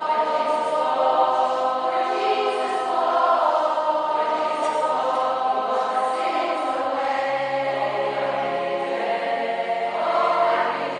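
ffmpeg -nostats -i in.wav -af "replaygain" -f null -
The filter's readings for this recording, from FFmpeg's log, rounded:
track_gain = +4.4 dB
track_peak = 0.329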